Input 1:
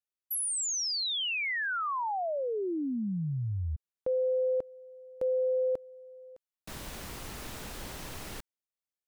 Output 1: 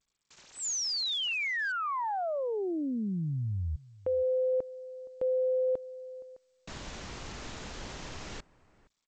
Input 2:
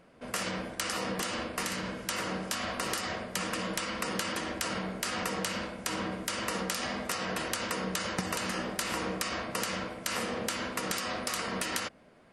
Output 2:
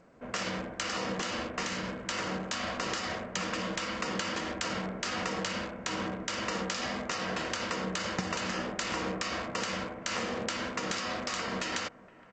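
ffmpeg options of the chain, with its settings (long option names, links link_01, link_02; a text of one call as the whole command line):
ffmpeg -i in.wav -filter_complex "[0:a]acrossover=split=2500[link_01][link_02];[link_01]aecho=1:1:468:0.0891[link_03];[link_02]acrusher=bits=7:mix=0:aa=0.000001[link_04];[link_03][link_04]amix=inputs=2:normalize=0" -ar 16000 -c:a g722 out.g722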